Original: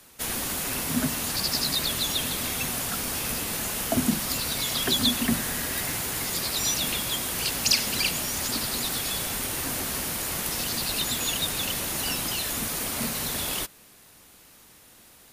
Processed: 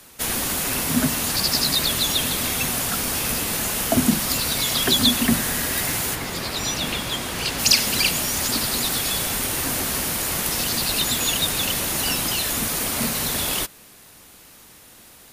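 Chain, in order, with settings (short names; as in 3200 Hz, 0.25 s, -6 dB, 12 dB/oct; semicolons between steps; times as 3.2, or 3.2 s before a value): 6.14–7.58 high shelf 4400 Hz -> 8000 Hz -12 dB; gain +5.5 dB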